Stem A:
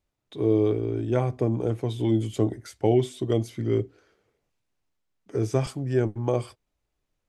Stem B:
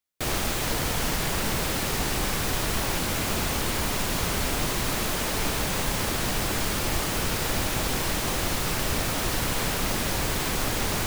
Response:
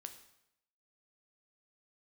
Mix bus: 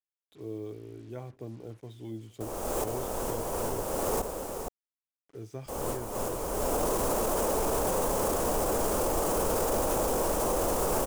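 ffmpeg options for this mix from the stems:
-filter_complex "[0:a]acrusher=bits=6:mix=0:aa=0.5,volume=-17dB,asplit=3[a][b][c];[b]volume=-23dB[d];[1:a]equalizer=f=125:t=o:w=1:g=-8,equalizer=f=500:t=o:w=1:g=11,equalizer=f=1k:t=o:w=1:g=5,equalizer=f=2k:t=o:w=1:g=-11,equalizer=f=4k:t=o:w=1:g=-11,equalizer=f=8k:t=o:w=1:g=3,adelay=2200,volume=2.5dB,asplit=3[e][f][g];[e]atrim=end=4.22,asetpts=PTS-STARTPTS,afade=t=out:st=4.216:d=0.004:c=hsin[h];[f]atrim=start=4.22:end=5.68,asetpts=PTS-STARTPTS,volume=0[i];[g]atrim=start=5.68,asetpts=PTS-STARTPTS,afade=t=in:d=0.004:c=hsin[j];[h][i][j]concat=n=3:v=0:a=1,asplit=2[k][l];[l]volume=-14dB[m];[c]apad=whole_len=584959[n];[k][n]sidechaincompress=threshold=-50dB:ratio=12:attack=7.2:release=446[o];[d][m]amix=inputs=2:normalize=0,aecho=0:1:465:1[p];[a][o][p]amix=inputs=3:normalize=0,alimiter=limit=-19.5dB:level=0:latency=1:release=18"

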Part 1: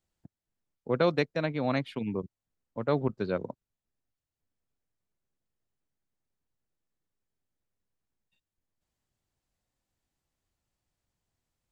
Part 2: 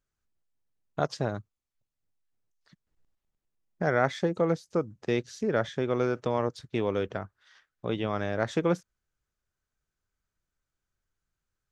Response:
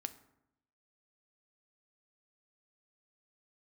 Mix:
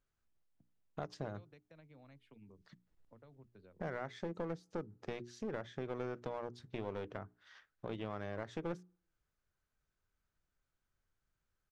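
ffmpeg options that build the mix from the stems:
-filter_complex "[0:a]acompressor=threshold=-27dB:ratio=6,equalizer=f=4.2k:w=1.5:g=-7,acrossover=split=130|3000[a][b][c];[b]acompressor=threshold=-40dB:ratio=6[d];[a][d][c]amix=inputs=3:normalize=0,adelay=350,volume=-19dB[e];[1:a]alimiter=limit=-15.5dB:level=0:latency=1:release=280,acompressor=threshold=-46dB:ratio=2,aeval=exprs='clip(val(0),-1,0.00841)':c=same,volume=-0.5dB,asplit=2[f][g];[g]volume=-20.5dB[h];[2:a]atrim=start_sample=2205[i];[h][i]afir=irnorm=-1:irlink=0[j];[e][f][j]amix=inputs=3:normalize=0,highshelf=f=5.4k:g=-9,bandreject=f=60:t=h:w=6,bandreject=f=120:t=h:w=6,bandreject=f=180:t=h:w=6,bandreject=f=240:t=h:w=6,bandreject=f=300:t=h:w=6,bandreject=f=360:t=h:w=6,bandreject=f=420:t=h:w=6"

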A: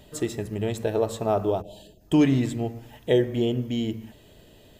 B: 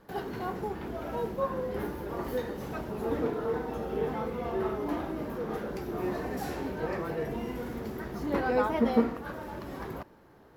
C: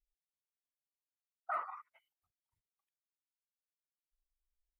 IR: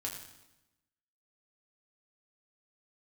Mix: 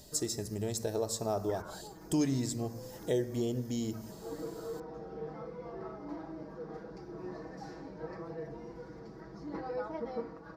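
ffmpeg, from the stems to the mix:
-filter_complex "[0:a]volume=-5dB,asplit=2[a][b];[1:a]lowpass=2.5k,aecho=1:1:6.2:0.9,adelay=1200,volume=-12.5dB[c];[2:a]alimiter=level_in=11.5dB:limit=-24dB:level=0:latency=1,volume=-11.5dB,aeval=exprs='val(0)*sin(2*PI*630*n/s+630*0.65/1.5*sin(2*PI*1.5*n/s))':c=same,volume=1.5dB[d];[b]apad=whole_len=519326[e];[c][e]sidechaincompress=threshold=-31dB:ratio=8:attack=16:release=1290[f];[a][f][d]amix=inputs=3:normalize=0,highshelf=f=3.9k:t=q:w=3:g=9.5,acompressor=threshold=-36dB:ratio=1.5"

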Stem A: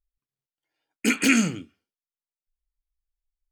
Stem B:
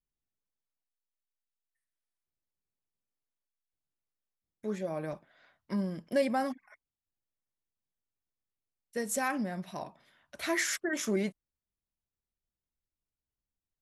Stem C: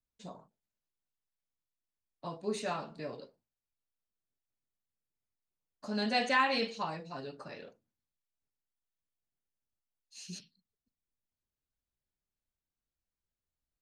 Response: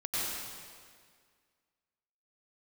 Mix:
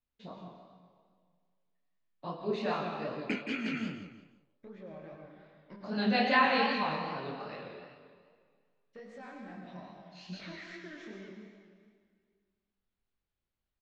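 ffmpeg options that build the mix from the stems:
-filter_complex "[0:a]alimiter=limit=-13dB:level=0:latency=1:release=24,adelay=2250,volume=-0.5dB,asplit=2[a][b];[b]volume=-9.5dB[c];[1:a]acompressor=threshold=-40dB:ratio=6,asoftclip=type=tanh:threshold=-35.5dB,volume=-4.5dB,asplit=2[d][e];[e]volume=-4dB[f];[2:a]volume=2.5dB,asplit=4[g][h][i][j];[h]volume=-8dB[k];[i]volume=-7.5dB[l];[j]apad=whole_len=254417[m];[a][m]sidechaingate=range=-12dB:threshold=-52dB:ratio=16:detection=peak[n];[3:a]atrim=start_sample=2205[o];[f][k]amix=inputs=2:normalize=0[p];[p][o]afir=irnorm=-1:irlink=0[q];[c][l]amix=inputs=2:normalize=0,aecho=0:1:172|344|516|688:1|0.31|0.0961|0.0298[r];[n][d][g][q][r]amix=inputs=5:normalize=0,lowpass=f=4k:w=0.5412,lowpass=f=4k:w=1.3066,flanger=delay=20:depth=7.8:speed=2.5"

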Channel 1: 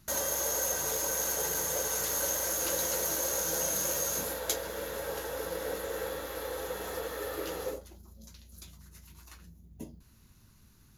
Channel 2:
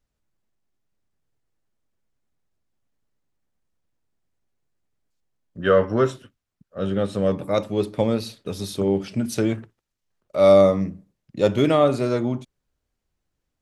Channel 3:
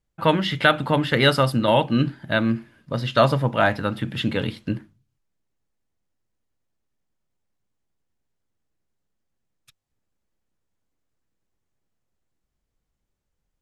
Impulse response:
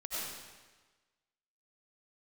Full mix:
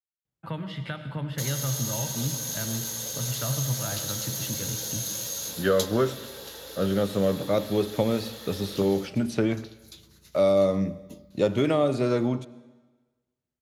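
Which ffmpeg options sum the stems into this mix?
-filter_complex "[0:a]equalizer=f=3.8k:w=1.4:g=11.5,acrossover=split=280|3000[a][b][c];[b]acompressor=threshold=-44dB:ratio=2.5[d];[a][d][c]amix=inputs=3:normalize=0,adelay=1300,volume=-3dB[e];[1:a]agate=range=-33dB:threshold=-37dB:ratio=3:detection=peak,acrossover=split=640|2700|5500[f][g][h][i];[f]acompressor=threshold=-22dB:ratio=4[j];[g]acompressor=threshold=-32dB:ratio=4[k];[h]acompressor=threshold=-45dB:ratio=4[l];[i]acompressor=threshold=-54dB:ratio=4[m];[j][k][l][m]amix=inputs=4:normalize=0,volume=0.5dB,asplit=2[n][o];[o]volume=-20dB[p];[2:a]equalizer=f=130:w=1.5:g=6.5,acrossover=split=150[q][r];[r]acompressor=threshold=-31dB:ratio=2.5[s];[q][s]amix=inputs=2:normalize=0,adelay=250,volume=-10dB,asplit=2[t][u];[u]volume=-9.5dB[v];[3:a]atrim=start_sample=2205[w];[p][v]amix=inputs=2:normalize=0[x];[x][w]afir=irnorm=-1:irlink=0[y];[e][n][t][y]amix=inputs=4:normalize=0,highpass=77"

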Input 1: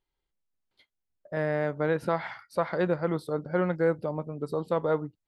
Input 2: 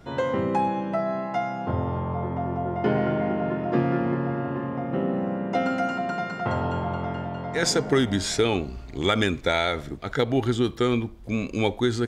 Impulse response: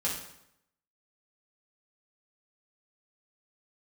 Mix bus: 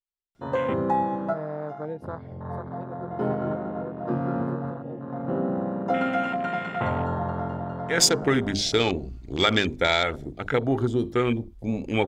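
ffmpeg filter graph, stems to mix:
-filter_complex "[0:a]volume=-5dB,afade=t=out:st=1.68:d=0.77:silence=0.316228,asplit=2[a][b];[1:a]bandreject=f=50:t=h:w=6,bandreject=f=100:t=h:w=6,bandreject=f=150:t=h:w=6,bandreject=f=200:t=h:w=6,bandreject=f=250:t=h:w=6,bandreject=f=300:t=h:w=6,bandreject=f=350:t=h:w=6,bandreject=f=400:t=h:w=6,bandreject=f=450:t=h:w=6,adelay=350,volume=0dB[c];[b]apad=whole_len=547786[d];[c][d]sidechaincompress=threshold=-41dB:ratio=8:attack=9.3:release=593[e];[a][e]amix=inputs=2:normalize=0,afwtdn=0.0224,highshelf=f=3.1k:g=8.5"

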